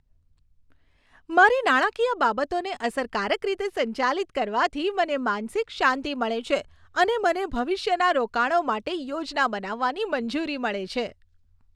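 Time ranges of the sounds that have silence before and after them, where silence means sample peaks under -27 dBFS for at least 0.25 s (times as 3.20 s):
1.31–6.61 s
6.97–11.07 s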